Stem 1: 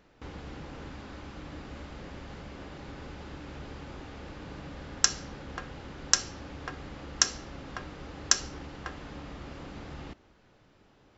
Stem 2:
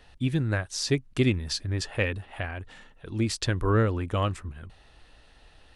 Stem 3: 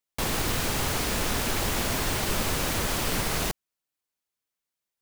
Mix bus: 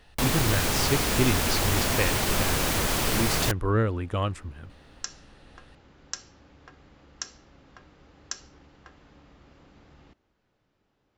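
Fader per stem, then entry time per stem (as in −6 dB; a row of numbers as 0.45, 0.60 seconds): −12.0, −1.0, +2.0 decibels; 0.00, 0.00, 0.00 seconds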